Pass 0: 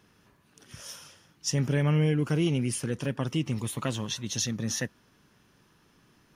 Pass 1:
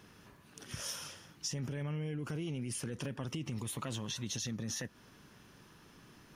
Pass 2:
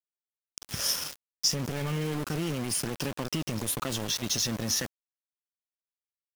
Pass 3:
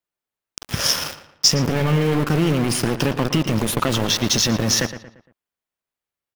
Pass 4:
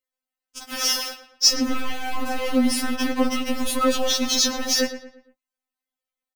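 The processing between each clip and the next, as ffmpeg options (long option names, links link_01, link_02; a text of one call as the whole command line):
ffmpeg -i in.wav -af "alimiter=level_in=1.5dB:limit=-24dB:level=0:latency=1:release=25,volume=-1.5dB,acompressor=threshold=-40dB:ratio=6,volume=4dB" out.wav
ffmpeg -i in.wav -af "equalizer=frequency=125:width_type=o:width=0.33:gain=-5,equalizer=frequency=5000:width_type=o:width=0.33:gain=8,equalizer=frequency=12500:width_type=o:width=0.33:gain=12,aeval=exprs='val(0)*gte(abs(val(0)),0.00944)':channel_layout=same,volume=8.5dB" out.wav
ffmpeg -i in.wav -filter_complex "[0:a]asplit=2[link_01][link_02];[link_02]adynamicsmooth=sensitivity=3.5:basefreq=3400,volume=3dB[link_03];[link_01][link_03]amix=inputs=2:normalize=0,asplit=2[link_04][link_05];[link_05]adelay=115,lowpass=frequency=3200:poles=1,volume=-11.5dB,asplit=2[link_06][link_07];[link_07]adelay=115,lowpass=frequency=3200:poles=1,volume=0.41,asplit=2[link_08][link_09];[link_09]adelay=115,lowpass=frequency=3200:poles=1,volume=0.41,asplit=2[link_10][link_11];[link_11]adelay=115,lowpass=frequency=3200:poles=1,volume=0.41[link_12];[link_04][link_06][link_08][link_10][link_12]amix=inputs=5:normalize=0,volume=5dB" out.wav
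ffmpeg -i in.wav -filter_complex "[0:a]asplit=2[link_01][link_02];[link_02]adelay=17,volume=-10dB[link_03];[link_01][link_03]amix=inputs=2:normalize=0,afftfilt=real='re*3.46*eq(mod(b,12),0)':imag='im*3.46*eq(mod(b,12),0)':win_size=2048:overlap=0.75" out.wav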